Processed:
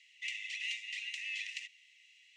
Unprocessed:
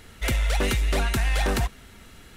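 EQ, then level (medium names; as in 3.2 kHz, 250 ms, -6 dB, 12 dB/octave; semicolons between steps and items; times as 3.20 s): rippled Chebyshev high-pass 1.9 kHz, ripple 9 dB; band-pass filter 2.6 kHz, Q 0.81; distance through air 88 m; 0.0 dB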